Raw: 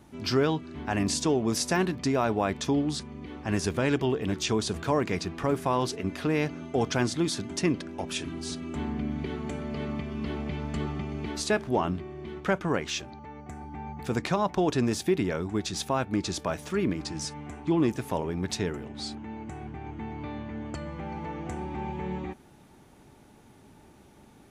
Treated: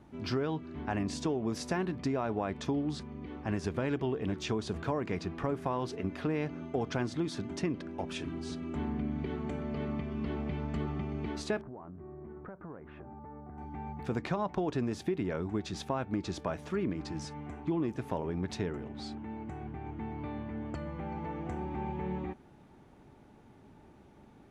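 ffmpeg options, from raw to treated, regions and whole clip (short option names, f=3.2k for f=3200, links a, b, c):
-filter_complex "[0:a]asettb=1/sr,asplit=3[a][b][c];[a]atrim=end=11.614[d];[b]atrim=start=11.61:end=13.58,asetpts=PTS-STARTPTS,afade=t=in:d=0.004:c=qsin,afade=t=out:st=1.966:d=0.004:c=qsin,lowpass=f=1.5k:w=0.5412,lowpass=f=1.5k:w=1.3066,acompressor=threshold=-40dB:ratio=8:attack=3.2:release=140:knee=1:detection=peak[e];[c]atrim=start=13.576[f];[d][e]acrossfade=d=0.004:c1=hsin:c2=qsin[g];[g][f]acrossfade=d=0.004:c1=qsin:c2=hsin,lowpass=f=1.9k:p=1,acompressor=threshold=-26dB:ratio=6,volume=-2dB"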